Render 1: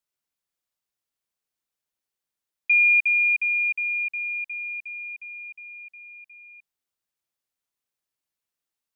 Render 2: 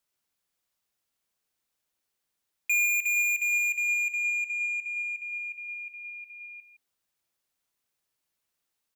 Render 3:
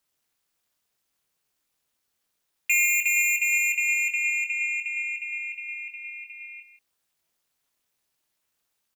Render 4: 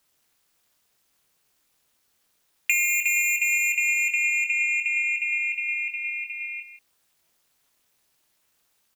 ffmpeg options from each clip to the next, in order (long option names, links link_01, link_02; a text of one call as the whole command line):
ffmpeg -i in.wav -af "asoftclip=type=tanh:threshold=-28dB,aecho=1:1:163:0.211,volume=5dB" out.wav
ffmpeg -i in.wav -filter_complex "[0:a]tremolo=f=300:d=0.974,asplit=2[link_01][link_02];[link_02]adelay=23,volume=-8dB[link_03];[link_01][link_03]amix=inputs=2:normalize=0,volume=8dB" out.wav
ffmpeg -i in.wav -af "acompressor=threshold=-29dB:ratio=4,volume=8dB" out.wav